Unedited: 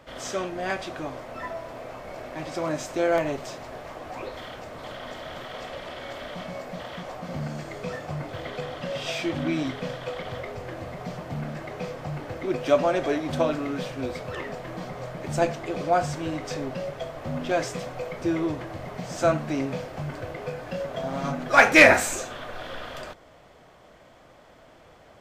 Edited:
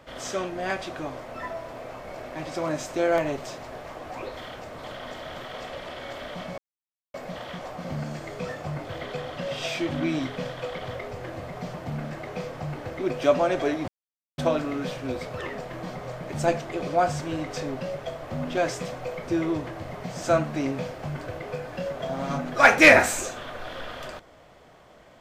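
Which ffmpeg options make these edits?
-filter_complex "[0:a]asplit=3[a][b][c];[a]atrim=end=6.58,asetpts=PTS-STARTPTS,afade=t=out:st=6.576:d=0.004:c=hsin,apad=pad_dur=0.56[d];[b]atrim=start=6.58:end=13.32,asetpts=PTS-STARTPTS,afade=t=in:d=0.004:c=hsin,afade=t=out:st=6.736:d=0.004:c=hsin,apad=pad_dur=0.5[e];[c]atrim=start=13.32,asetpts=PTS-STARTPTS,afade=t=in:d=0.004:c=hsin[f];[d][e][f]concat=n=3:v=0:a=1"

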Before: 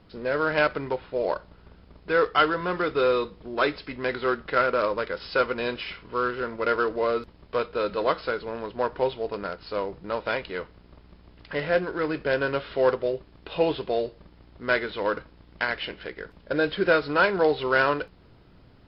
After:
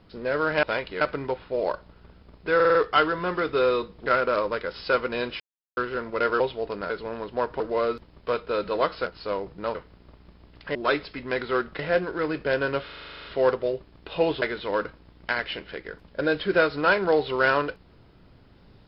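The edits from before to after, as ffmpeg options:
-filter_complex "[0:a]asplit=28[a][b][c][d][e][f][g][h][i][j][k][l][m][n][o][p][q][r][s][t][u][v][w][x][y][z][aa][ab];[a]atrim=end=0.632[ac];[b]atrim=start=10.208:end=10.592[ad];[c]atrim=start=0.628:end=2.222[ae];[d]atrim=start=2.168:end=2.222[af];[e]atrim=start=2.168:end=2.222[ag];[f]atrim=start=2.168:end=2.222[ah];[g]atrim=start=2.168:end=3.482[ai];[h]atrim=start=4.518:end=5.86,asetpts=PTS-STARTPTS,afade=t=out:st=1.338:d=0.004:c=hsin[aj];[i]atrim=start=5.86:end=6.23,asetpts=PTS-STARTPTS,volume=0[ak];[j]atrim=start=6.23:end=6.862,asetpts=PTS-STARTPTS,afade=t=in:d=0.004:c=hsin[al];[k]atrim=start=9.018:end=9.522[am];[l]atrim=start=8.318:end=9.022[an];[m]atrim=start=6.858:end=8.322[ao];[n]atrim=start=9.518:end=10.212[ap];[o]atrim=start=10.588:end=11.592[aq];[p]atrim=start=3.478:end=4.522[ar];[q]atrim=start=11.588:end=12.692[as];[r]atrim=start=12.648:end=12.692[at];[s]atrim=start=12.648:end=12.692[au];[t]atrim=start=12.648:end=12.692[av];[u]atrim=start=12.648:end=12.692[aw];[v]atrim=start=12.648:end=12.692[ax];[w]atrim=start=12.648:end=12.692[ay];[x]atrim=start=12.648:end=12.692[az];[y]atrim=start=12.648:end=12.692[ba];[z]atrim=start=12.648:end=12.692[bb];[aa]atrim=start=12.648:end=13.822[bc];[ab]atrim=start=14.738[bd];[ac][ad]acrossfade=d=0.004:c1=hsin:c2=hsin[be];[be][ae]acrossfade=d=0.004:c1=hsin:c2=hsin[bf];[bf][af]acrossfade=d=0.004:c1=hsin:c2=hsin[bg];[bg][ag]acrossfade=d=0.004:c1=hsin:c2=hsin[bh];[bh][ah]acrossfade=d=0.004:c1=hsin:c2=hsin[bi];[bi][ai]acrossfade=d=0.004:c1=hsin:c2=hsin[bj];[aj][ak][al]concat=n=3:v=0:a=1[bk];[bj][bk]acrossfade=d=0.004:c1=hsin:c2=hsin[bl];[bl][am]acrossfade=d=0.004:c1=hsin:c2=hsin[bm];[bm][an]acrossfade=d=0.004:c1=hsin:c2=hsin[bn];[bn][ao]acrossfade=d=0.004:c1=hsin:c2=hsin[bo];[bo][ap]acrossfade=d=0.004:c1=hsin:c2=hsin[bp];[bp][aq]acrossfade=d=0.004:c1=hsin:c2=hsin[bq];[bq][ar]acrossfade=d=0.004:c1=hsin:c2=hsin[br];[br][as]acrossfade=d=0.004:c1=hsin:c2=hsin[bs];[bs][at]acrossfade=d=0.004:c1=hsin:c2=hsin[bt];[bt][au]acrossfade=d=0.004:c1=hsin:c2=hsin[bu];[bu][av]acrossfade=d=0.004:c1=hsin:c2=hsin[bv];[bv][aw]acrossfade=d=0.004:c1=hsin:c2=hsin[bw];[bw][ax]acrossfade=d=0.004:c1=hsin:c2=hsin[bx];[bx][ay]acrossfade=d=0.004:c1=hsin:c2=hsin[by];[by][az]acrossfade=d=0.004:c1=hsin:c2=hsin[bz];[bz][ba]acrossfade=d=0.004:c1=hsin:c2=hsin[ca];[ca][bb]acrossfade=d=0.004:c1=hsin:c2=hsin[cb];[cb][bc]acrossfade=d=0.004:c1=hsin:c2=hsin[cc];[cc][bd]acrossfade=d=0.004:c1=hsin:c2=hsin"

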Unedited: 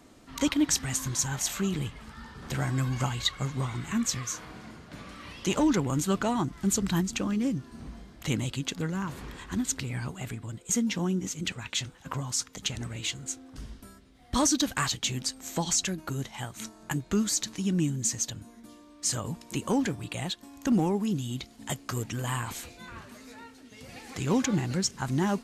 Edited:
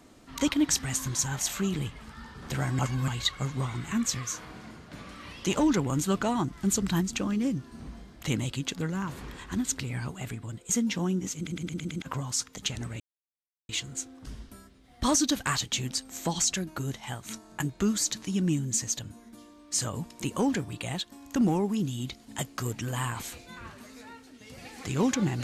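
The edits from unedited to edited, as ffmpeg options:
-filter_complex "[0:a]asplit=10[a][b][c][d][e][f][g][h][i][j];[a]atrim=end=2.792[k];[b]atrim=start=2.788:end=3.082,asetpts=PTS-STARTPTS,areverse[l];[c]atrim=start=3.078:end=11.472[m];[d]atrim=start=11.358:end=11.472[n];[e]atrim=start=11.358:end=11.472[o];[f]atrim=start=11.358:end=11.472[p];[g]atrim=start=11.358:end=11.472[q];[h]atrim=start=11.358:end=11.472[r];[i]atrim=start=12.018:end=13,asetpts=PTS-STARTPTS,afade=t=out:st=0.978:d=0.004:c=hsin,apad=pad_dur=0.69[s];[j]atrim=start=13,asetpts=PTS-STARTPTS,afade=t=in:d=0.004:c=hsin[t];[k][l]acrossfade=d=0.004:c1=hsin:c2=hsin[u];[u][m]acrossfade=d=0.004:c1=hsin:c2=hsin[v];[v][n]acrossfade=d=0.004:c1=hsin:c2=hsin[w];[w][o]acrossfade=d=0.004:c1=hsin:c2=hsin[x];[x][p]acrossfade=d=0.004:c1=hsin:c2=hsin[y];[y][q]acrossfade=d=0.004:c1=hsin:c2=hsin[z];[z][r]acrossfade=d=0.004:c1=hsin:c2=hsin[aa];[s][t]concat=n=2:v=0:a=1[ab];[aa][ab]acrossfade=d=0.004:c1=hsin:c2=hsin"

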